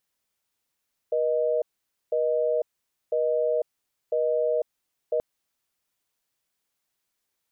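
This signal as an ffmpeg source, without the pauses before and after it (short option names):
-f lavfi -i "aevalsrc='0.0631*(sin(2*PI*480*t)+sin(2*PI*620*t))*clip(min(mod(t,1),0.5-mod(t,1))/0.005,0,1)':d=4.08:s=44100"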